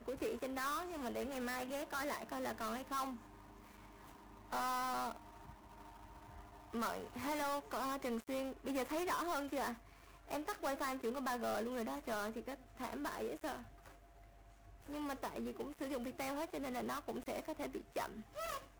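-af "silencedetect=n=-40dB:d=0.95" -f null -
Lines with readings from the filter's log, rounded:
silence_start: 3.10
silence_end: 4.53 | silence_duration: 1.42
silence_start: 5.16
silence_end: 6.74 | silence_duration: 1.58
silence_start: 13.57
silence_end: 14.92 | silence_duration: 1.35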